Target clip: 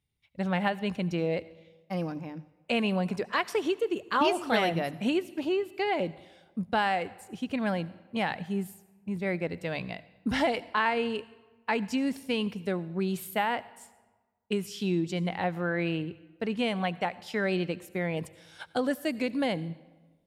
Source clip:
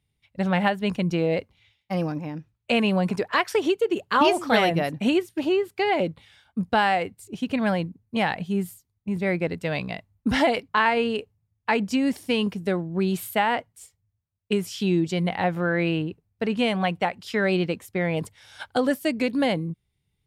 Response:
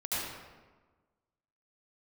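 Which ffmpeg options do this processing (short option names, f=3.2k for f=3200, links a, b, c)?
-filter_complex "[0:a]bandreject=f=50:t=h:w=6,bandreject=f=100:t=h:w=6,bandreject=f=150:t=h:w=6,asplit=2[a][b];[1:a]atrim=start_sample=2205,highshelf=f=3.4k:g=7.5[c];[b][c]afir=irnorm=-1:irlink=0,volume=-26.5dB[d];[a][d]amix=inputs=2:normalize=0,volume=-6dB"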